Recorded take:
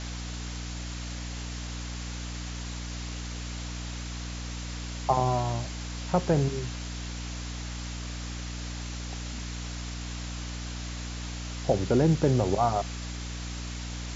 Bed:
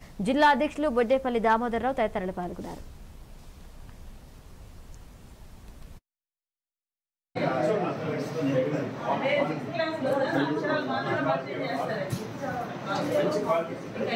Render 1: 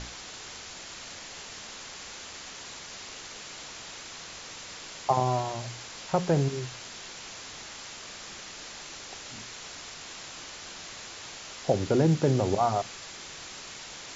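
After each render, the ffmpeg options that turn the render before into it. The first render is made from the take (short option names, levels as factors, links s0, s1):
-af "bandreject=f=60:t=h:w=6,bandreject=f=120:t=h:w=6,bandreject=f=180:t=h:w=6,bandreject=f=240:t=h:w=6,bandreject=f=300:t=h:w=6"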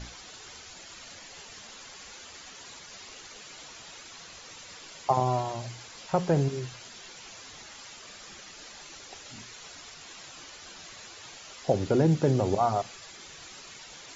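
-af "afftdn=nr=9:nf=-44"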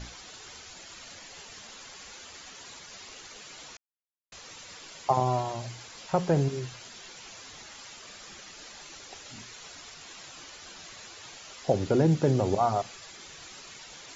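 -filter_complex "[0:a]asplit=3[s0][s1][s2];[s0]atrim=end=3.77,asetpts=PTS-STARTPTS,afade=t=out:st=3.766:d=0.004:c=hsin[s3];[s1]atrim=start=3.77:end=4.32,asetpts=PTS-STARTPTS,volume=0[s4];[s2]atrim=start=4.32,asetpts=PTS-STARTPTS,afade=t=in:d=0.004:c=hsin[s5];[s3][s4][s5]concat=n=3:v=0:a=1"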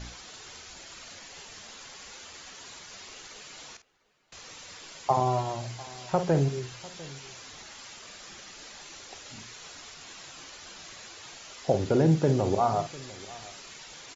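-filter_complex "[0:a]asplit=2[s0][s1];[s1]adelay=50,volume=0.299[s2];[s0][s2]amix=inputs=2:normalize=0,asplit=2[s3][s4];[s4]adelay=699.7,volume=0.1,highshelf=f=4000:g=-15.7[s5];[s3][s5]amix=inputs=2:normalize=0"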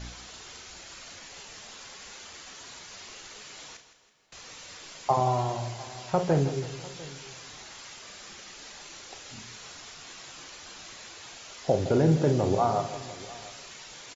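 -filter_complex "[0:a]asplit=2[s0][s1];[s1]adelay=33,volume=0.266[s2];[s0][s2]amix=inputs=2:normalize=0,aecho=1:1:163|326|489|652|815:0.237|0.111|0.0524|0.0246|0.0116"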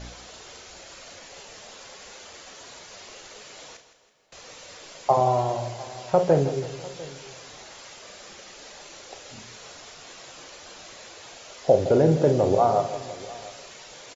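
-af "equalizer=f=550:w=1.5:g=8.5"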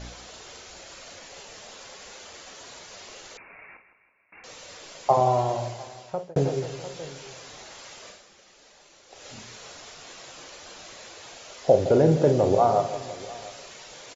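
-filter_complex "[0:a]asettb=1/sr,asplit=3[s0][s1][s2];[s0]atrim=end=3.374[s3];[s1]atrim=start=3.37:end=4.44,asetpts=PTS-STARTPTS,afade=t=in:d=0.004:c=qsin,afade=t=out:st=1.066:d=0.004:c=qsin,lowpass=f=2400:t=q:w=0.5098,lowpass=f=2400:t=q:w=0.6013,lowpass=f=2400:t=q:w=0.9,lowpass=f=2400:t=q:w=2.563,afreqshift=-2800[s4];[s2]atrim=start=4.436[s5];[s3][s4]acrossfade=d=0.004:c1=hsin:c2=qsin[s6];[s6][s5]acrossfade=d=0.004:c1=qsin:c2=hsin,asplit=4[s7][s8][s9][s10];[s7]atrim=end=6.36,asetpts=PTS-STARTPTS,afade=t=out:st=5.64:d=0.72[s11];[s8]atrim=start=6.36:end=8.3,asetpts=PTS-STARTPTS,afade=t=in:d=0.004:c=hsin,afade=t=out:st=1.72:d=0.22:c=qua:silence=0.298538[s12];[s9]atrim=start=8.3:end=9.03,asetpts=PTS-STARTPTS,volume=0.299[s13];[s10]atrim=start=9.03,asetpts=PTS-STARTPTS,afade=t=in:d=0.22:c=qua:silence=0.298538[s14];[s11][s12][s13][s14]concat=n=4:v=0:a=1"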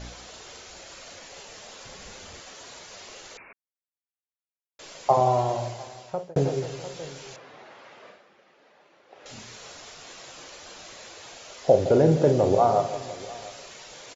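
-filter_complex "[0:a]asettb=1/sr,asplit=3[s0][s1][s2];[s0]atrim=end=1.854[s3];[s1]atrim=start=1.85:end=2.4,asetpts=PTS-STARTPTS,afade=t=in:d=0.004:c=qsin,afade=t=out:st=0.546:d=0.004:c=qsin,bass=f=250:g=12,treble=f=4000:g=0[s4];[s2]atrim=start=2.396[s5];[s3][s4]acrossfade=d=0.004:c1=hsin:c2=qsin[s6];[s6][s5]acrossfade=d=0.004:c1=qsin:c2=hsin,asettb=1/sr,asplit=3[s7][s8][s9];[s7]atrim=end=7.364[s10];[s8]atrim=start=7.36:end=9.26,asetpts=PTS-STARTPTS,afade=t=in:d=0.004:c=qsin,afade=t=out:st=1.896:d=0.004:c=qsin,highpass=160,lowpass=2100[s11];[s9]atrim=start=9.256[s12];[s10][s11]acrossfade=d=0.004:c1=hsin:c2=qsin[s13];[s13][s12]acrossfade=d=0.004:c1=qsin:c2=hsin,asplit=3[s14][s15][s16];[s14]atrim=end=3.53,asetpts=PTS-STARTPTS,afade=t=out:st=3.526:d=0.004:c=hsin[s17];[s15]atrim=start=3.53:end=4.79,asetpts=PTS-STARTPTS,volume=0[s18];[s16]atrim=start=4.79,asetpts=PTS-STARTPTS,afade=t=in:d=0.004:c=hsin[s19];[s17][s18][s19]concat=n=3:v=0:a=1"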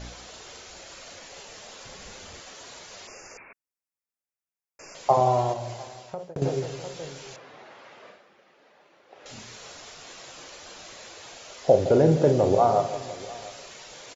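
-filter_complex "[0:a]asettb=1/sr,asplit=3[s0][s1][s2];[s0]atrim=end=3.074[s3];[s1]atrim=start=3.07:end=4.95,asetpts=PTS-STARTPTS,afade=t=in:d=0.004:c=qsin,afade=t=out:st=1.876:d=0.004:c=qsin,asuperstop=centerf=3600:order=20:qfactor=1.9[s4];[s2]atrim=start=4.946[s5];[s3][s4]acrossfade=d=0.004:c1=hsin:c2=qsin[s6];[s6][s5]acrossfade=d=0.004:c1=qsin:c2=hsin,asettb=1/sr,asplit=3[s7][s8][s9];[s7]atrim=end=5.534[s10];[s8]atrim=start=5.53:end=6.42,asetpts=PTS-STARTPTS,afade=t=in:d=0.004:c=qsin,afade=t=out:st=0.886:d=0.004:c=qsin,acompressor=threshold=0.0355:ratio=6:attack=3.2:release=140:knee=1:detection=peak[s11];[s9]atrim=start=6.416[s12];[s10][s11]acrossfade=d=0.004:c1=hsin:c2=qsin[s13];[s13][s12]acrossfade=d=0.004:c1=qsin:c2=hsin"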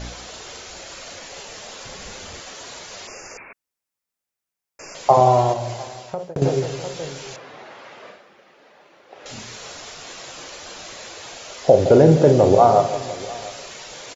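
-af "volume=2.24,alimiter=limit=0.794:level=0:latency=1"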